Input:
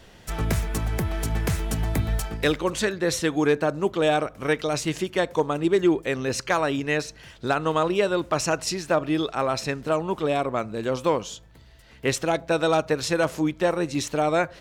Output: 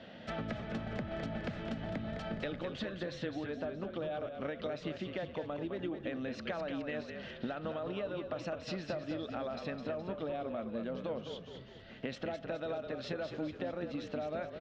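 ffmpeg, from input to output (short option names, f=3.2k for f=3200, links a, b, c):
-filter_complex "[0:a]highpass=150,equalizer=f=230:t=q:w=4:g=9,equalizer=f=390:t=q:w=4:g=-7,equalizer=f=610:t=q:w=4:g=8,equalizer=f=1k:t=q:w=4:g=-9,equalizer=f=2.3k:t=q:w=4:g=-4,lowpass=f=3.7k:w=0.5412,lowpass=f=3.7k:w=1.3066,alimiter=limit=-16dB:level=0:latency=1:release=39,acompressor=threshold=-36dB:ratio=12,asplit=7[a][b][c][d][e][f][g];[b]adelay=209,afreqshift=-39,volume=-7dB[h];[c]adelay=418,afreqshift=-78,volume=-13dB[i];[d]adelay=627,afreqshift=-117,volume=-19dB[j];[e]adelay=836,afreqshift=-156,volume=-25.1dB[k];[f]adelay=1045,afreqshift=-195,volume=-31.1dB[l];[g]adelay=1254,afreqshift=-234,volume=-37.1dB[m];[a][h][i][j][k][l][m]amix=inputs=7:normalize=0"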